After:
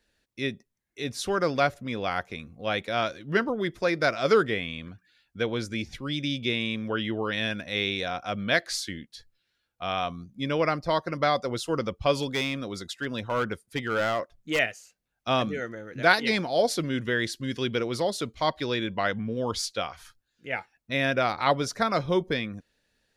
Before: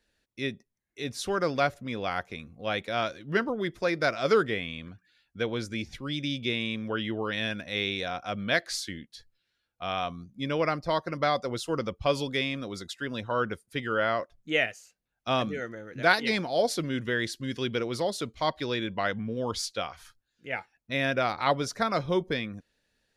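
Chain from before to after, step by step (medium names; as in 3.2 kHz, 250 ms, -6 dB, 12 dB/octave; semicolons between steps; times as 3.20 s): 12.22–14.59 s: hard clipper -23 dBFS, distortion -22 dB; trim +2 dB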